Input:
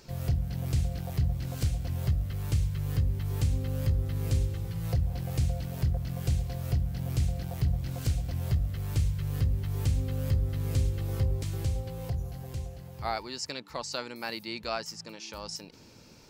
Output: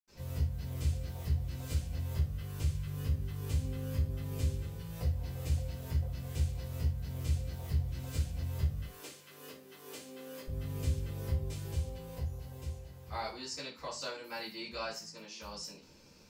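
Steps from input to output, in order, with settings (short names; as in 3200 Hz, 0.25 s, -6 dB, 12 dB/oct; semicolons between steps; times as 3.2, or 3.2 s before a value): 8.77–10.4 HPF 290 Hz 24 dB/oct; reverb RT60 0.30 s, pre-delay 77 ms, DRR -60 dB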